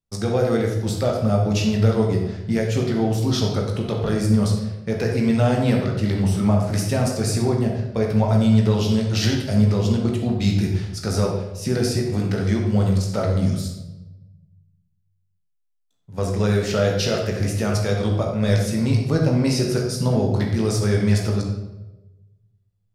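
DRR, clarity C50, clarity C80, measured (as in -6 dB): -0.5 dB, 3.5 dB, 6.5 dB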